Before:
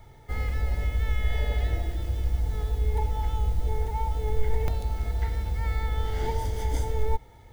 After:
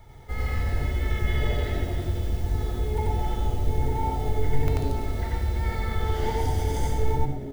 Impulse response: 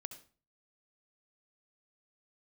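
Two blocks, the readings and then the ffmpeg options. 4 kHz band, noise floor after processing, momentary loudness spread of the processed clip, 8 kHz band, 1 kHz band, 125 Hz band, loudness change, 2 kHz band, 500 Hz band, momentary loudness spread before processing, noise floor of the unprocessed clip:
+3.5 dB, -34 dBFS, 2 LU, n/a, +3.5 dB, +2.0 dB, +1.5 dB, +3.0 dB, +4.0 dB, 3 LU, -51 dBFS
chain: -filter_complex "[0:a]asplit=6[a][b][c][d][e][f];[b]adelay=110,afreqshift=-140,volume=-13dB[g];[c]adelay=220,afreqshift=-280,volume=-18.5dB[h];[d]adelay=330,afreqshift=-420,volume=-24dB[i];[e]adelay=440,afreqshift=-560,volume=-29.5dB[j];[f]adelay=550,afreqshift=-700,volume=-35.1dB[k];[a][g][h][i][j][k]amix=inputs=6:normalize=0,asplit=2[l][m];[1:a]atrim=start_sample=2205,adelay=89[n];[m][n]afir=irnorm=-1:irlink=0,volume=4dB[o];[l][o]amix=inputs=2:normalize=0"

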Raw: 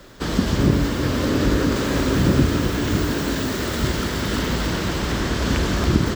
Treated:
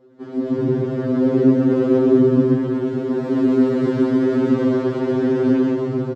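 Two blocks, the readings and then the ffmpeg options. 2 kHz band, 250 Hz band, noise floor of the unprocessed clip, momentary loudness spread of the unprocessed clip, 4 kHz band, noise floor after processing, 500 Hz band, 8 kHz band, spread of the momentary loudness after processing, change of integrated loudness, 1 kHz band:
-9.5 dB, +5.5 dB, -26 dBFS, 5 LU, under -15 dB, -33 dBFS, +7.5 dB, under -20 dB, 7 LU, +3.5 dB, -5.0 dB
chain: -filter_complex "[0:a]bandpass=f=340:t=q:w=1.7:csg=0,dynaudnorm=f=340:g=3:m=11.5dB,asplit=2[a][b];[b]aecho=0:1:130:0.708[c];[a][c]amix=inputs=2:normalize=0,afftfilt=real='re*2.45*eq(mod(b,6),0)':imag='im*2.45*eq(mod(b,6),0)':win_size=2048:overlap=0.75"

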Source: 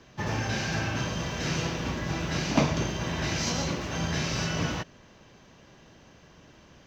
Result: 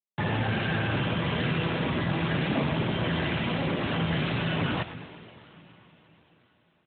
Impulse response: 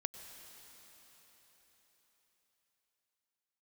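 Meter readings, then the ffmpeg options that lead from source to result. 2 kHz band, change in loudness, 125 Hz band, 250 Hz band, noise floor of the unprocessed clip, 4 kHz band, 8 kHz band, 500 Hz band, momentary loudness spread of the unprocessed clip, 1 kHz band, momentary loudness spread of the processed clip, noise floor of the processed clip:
+2.0 dB, +1.5 dB, +2.5 dB, +2.5 dB, -55 dBFS, 0.0 dB, under -40 dB, +2.0 dB, 5 LU, +1.5 dB, 3 LU, -68 dBFS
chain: -filter_complex "[0:a]acompressor=threshold=-30dB:ratio=4,aeval=exprs='0.119*(cos(1*acos(clip(val(0)/0.119,-1,1)))-cos(1*PI/2))+0.0237*(cos(2*acos(clip(val(0)/0.119,-1,1)))-cos(2*PI/2))+0.00422*(cos(5*acos(clip(val(0)/0.119,-1,1)))-cos(5*PI/2))':c=same,aresample=16000,acrusher=bits=5:mix=0:aa=0.000001,aresample=44100,asoftclip=type=tanh:threshold=-25dB,acontrast=87,asplit=6[a][b][c][d][e][f];[b]adelay=113,afreqshift=-140,volume=-12.5dB[g];[c]adelay=226,afreqshift=-280,volume=-18dB[h];[d]adelay=339,afreqshift=-420,volume=-23.5dB[i];[e]adelay=452,afreqshift=-560,volume=-29dB[j];[f]adelay=565,afreqshift=-700,volume=-34.6dB[k];[a][g][h][i][j][k]amix=inputs=6:normalize=0,asplit=2[l][m];[1:a]atrim=start_sample=2205[n];[m][n]afir=irnorm=-1:irlink=0,volume=-2.5dB[o];[l][o]amix=inputs=2:normalize=0,volume=-4dB" -ar 8000 -c:a libopencore_amrnb -b:a 12200

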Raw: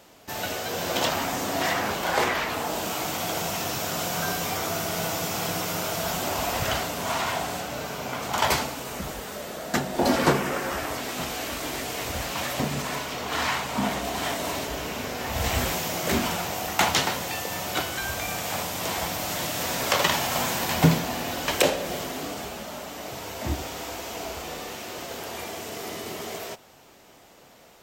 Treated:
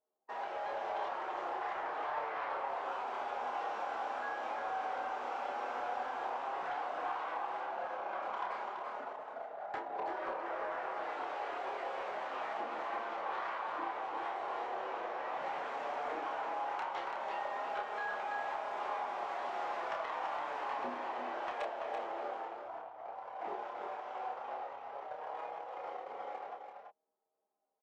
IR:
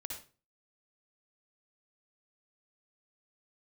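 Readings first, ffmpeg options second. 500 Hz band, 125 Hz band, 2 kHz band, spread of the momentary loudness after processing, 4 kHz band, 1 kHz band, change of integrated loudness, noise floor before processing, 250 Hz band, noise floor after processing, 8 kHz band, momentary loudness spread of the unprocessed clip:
-11.0 dB, under -35 dB, -13.0 dB, 6 LU, -24.5 dB, -6.5 dB, -12.0 dB, -52 dBFS, -23.0 dB, -52 dBFS, under -35 dB, 11 LU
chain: -filter_complex "[0:a]highpass=540,anlmdn=3.98,lowpass=1.1k,acompressor=threshold=-34dB:ratio=12,afreqshift=84,flanger=delay=4.7:depth=4.4:regen=-35:speed=0.11:shape=sinusoidal,asoftclip=type=tanh:threshold=-32.5dB,asplit=2[a][b];[b]adelay=29,volume=-5dB[c];[a][c]amix=inputs=2:normalize=0,aecho=1:1:335:0.501,volume=2dB"

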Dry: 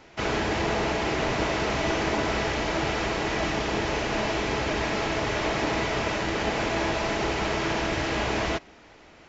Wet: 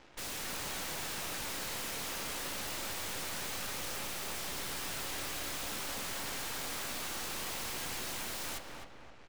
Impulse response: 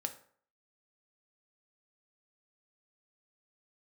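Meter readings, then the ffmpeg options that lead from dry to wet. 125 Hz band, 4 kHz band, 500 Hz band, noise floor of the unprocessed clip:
-18.5 dB, -7.5 dB, -19.5 dB, -52 dBFS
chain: -filter_complex "[0:a]acrossover=split=2700[a][b];[a]asoftclip=type=tanh:threshold=-28dB[c];[c][b]amix=inputs=2:normalize=0,aeval=exprs='0.0944*(cos(1*acos(clip(val(0)/0.0944,-1,1)))-cos(1*PI/2))+0.00841*(cos(3*acos(clip(val(0)/0.0944,-1,1)))-cos(3*PI/2))+0.00266*(cos(4*acos(clip(val(0)/0.0944,-1,1)))-cos(4*PI/2))+0.0376*(cos(6*acos(clip(val(0)/0.0944,-1,1)))-cos(6*PI/2))+0.0133*(cos(7*acos(clip(val(0)/0.0944,-1,1)))-cos(7*PI/2))':c=same,aphaser=in_gain=1:out_gain=1:delay=4.4:decay=0.2:speed=0.24:type=sinusoidal,aeval=exprs='0.0188*(abs(mod(val(0)/0.0188+3,4)-2)-1)':c=same,asplit=2[d][e];[e]adelay=259,lowpass=f=2k:p=1,volume=-3dB,asplit=2[f][g];[g]adelay=259,lowpass=f=2k:p=1,volume=0.48,asplit=2[h][i];[i]adelay=259,lowpass=f=2k:p=1,volume=0.48,asplit=2[j][k];[k]adelay=259,lowpass=f=2k:p=1,volume=0.48,asplit=2[l][m];[m]adelay=259,lowpass=f=2k:p=1,volume=0.48,asplit=2[n][o];[o]adelay=259,lowpass=f=2k:p=1,volume=0.48[p];[d][f][h][j][l][n][p]amix=inputs=7:normalize=0,asplit=2[q][r];[1:a]atrim=start_sample=2205[s];[r][s]afir=irnorm=-1:irlink=0,volume=-0.5dB[t];[q][t]amix=inputs=2:normalize=0,volume=-6dB"

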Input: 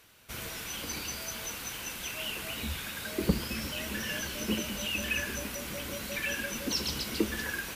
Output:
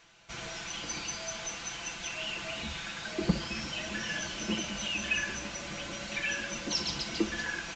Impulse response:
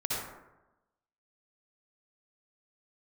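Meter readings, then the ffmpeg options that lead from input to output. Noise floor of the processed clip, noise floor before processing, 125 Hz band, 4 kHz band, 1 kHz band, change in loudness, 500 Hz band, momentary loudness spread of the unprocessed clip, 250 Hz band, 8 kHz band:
-42 dBFS, -41 dBFS, -1.5 dB, +0.5 dB, +1.5 dB, -0.5 dB, -2.0 dB, 6 LU, -1.0 dB, -0.5 dB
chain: -filter_complex "[0:a]aecho=1:1:5.9:0.54,asplit=2[a][b];[b]highpass=f=640:t=q:w=4.9[c];[1:a]atrim=start_sample=2205,atrim=end_sample=3087[d];[c][d]afir=irnorm=-1:irlink=0,volume=-13dB[e];[a][e]amix=inputs=2:normalize=0,volume=-2.5dB" -ar 16000 -c:a pcm_mulaw

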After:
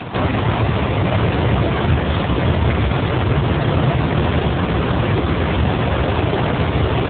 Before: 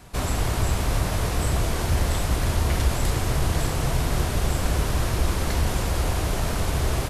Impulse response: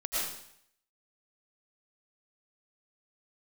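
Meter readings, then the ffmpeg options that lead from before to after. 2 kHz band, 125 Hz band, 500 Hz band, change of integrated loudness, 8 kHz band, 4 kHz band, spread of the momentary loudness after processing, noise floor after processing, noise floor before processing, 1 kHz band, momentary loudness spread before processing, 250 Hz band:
+8.0 dB, +7.5 dB, +10.5 dB, +7.0 dB, under -40 dB, +5.0 dB, 1 LU, -21 dBFS, -27 dBFS, +9.0 dB, 2 LU, +11.5 dB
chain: -af "acompressor=mode=upward:threshold=-27dB:ratio=2.5,alimiter=level_in=13.5dB:limit=-1dB:release=50:level=0:latency=1" -ar 8000 -c:a libopencore_amrnb -b:a 7400

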